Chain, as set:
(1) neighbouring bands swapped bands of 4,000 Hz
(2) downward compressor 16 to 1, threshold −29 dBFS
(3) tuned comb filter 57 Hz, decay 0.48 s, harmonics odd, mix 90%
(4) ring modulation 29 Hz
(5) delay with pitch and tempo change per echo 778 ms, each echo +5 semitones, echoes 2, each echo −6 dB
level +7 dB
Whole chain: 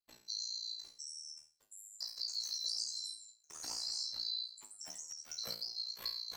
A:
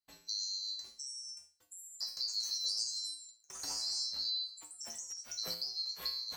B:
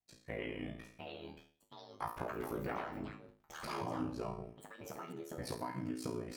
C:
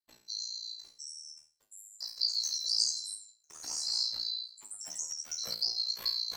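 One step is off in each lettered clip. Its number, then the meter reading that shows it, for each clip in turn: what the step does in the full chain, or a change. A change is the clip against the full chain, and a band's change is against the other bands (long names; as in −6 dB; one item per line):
4, change in crest factor −2.0 dB
1, 4 kHz band −33.0 dB
2, average gain reduction 4.5 dB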